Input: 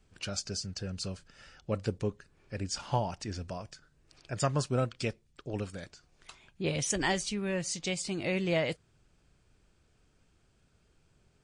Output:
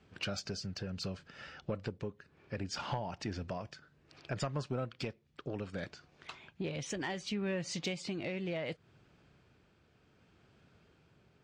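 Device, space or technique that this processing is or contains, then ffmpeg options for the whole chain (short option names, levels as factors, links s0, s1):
AM radio: -af "highpass=100,lowpass=3700,acompressor=threshold=0.0126:ratio=8,asoftclip=type=tanh:threshold=0.0282,tremolo=f=0.66:d=0.3,volume=2.11"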